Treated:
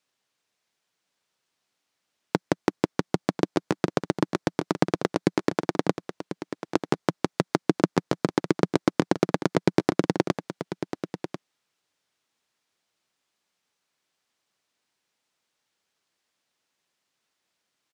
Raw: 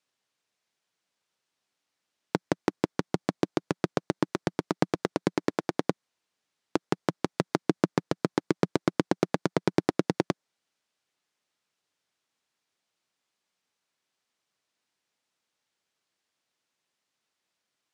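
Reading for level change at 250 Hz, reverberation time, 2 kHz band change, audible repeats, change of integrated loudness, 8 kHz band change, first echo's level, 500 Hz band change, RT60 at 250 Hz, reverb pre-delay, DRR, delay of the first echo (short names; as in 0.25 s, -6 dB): +3.5 dB, none, +3.5 dB, 1, +3.0 dB, +3.5 dB, -10.5 dB, +3.5 dB, none, none, none, 1.043 s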